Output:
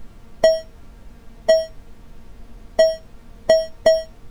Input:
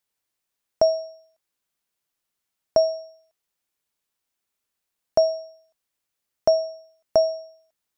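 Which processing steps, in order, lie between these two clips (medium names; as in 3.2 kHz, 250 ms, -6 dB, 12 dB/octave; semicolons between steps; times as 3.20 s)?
waveshaping leveller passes 2; in parallel at +2.5 dB: compression, threshold -22 dBFS, peak gain reduction 10 dB; on the sum: added noise brown -38 dBFS; feedback comb 230 Hz, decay 0.18 s, harmonics all, mix 70%; time stretch by phase-locked vocoder 0.54×; trim +7.5 dB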